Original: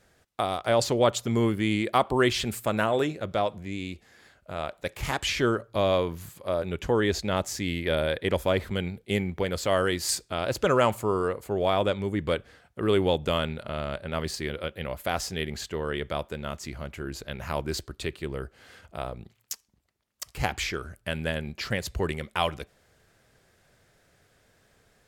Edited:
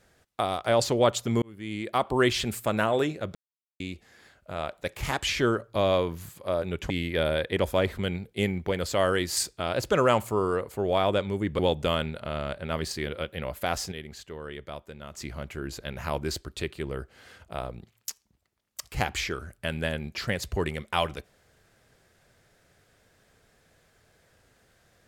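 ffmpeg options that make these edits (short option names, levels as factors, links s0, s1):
-filter_complex "[0:a]asplit=8[s0][s1][s2][s3][s4][s5][s6][s7];[s0]atrim=end=1.42,asetpts=PTS-STARTPTS,afade=t=out:st=1.416:d=0.004:c=hsin[s8];[s1]atrim=start=1.42:end=3.35,asetpts=PTS-STARTPTS,afade=t=in:d=0.81,afade=t=out:st=1.926:d=0.004:c=hsin[s9];[s2]atrim=start=3.35:end=3.8,asetpts=PTS-STARTPTS,volume=0[s10];[s3]atrim=start=3.8:end=6.902,asetpts=PTS-STARTPTS,afade=t=in:d=0.004:c=hsin[s11];[s4]atrim=start=7.618:end=12.312[s12];[s5]atrim=start=13.018:end=15.352[s13];[s6]atrim=start=15.348:end=16.572,asetpts=PTS-STARTPTS,volume=0.376[s14];[s7]atrim=start=16.568[s15];[s8][s9][s10][s11]concat=n=4:v=0:a=1[s16];[s16][s12]acrossfade=d=0.004:c1=hsin:c2=hsin[s17];[s17][s13]acrossfade=d=0.004:c1=hsin:c2=hsin[s18];[s18][s14]acrossfade=d=0.004:c1=hsin:c2=hsin[s19];[s19][s15]acrossfade=d=0.004:c1=hsin:c2=hsin"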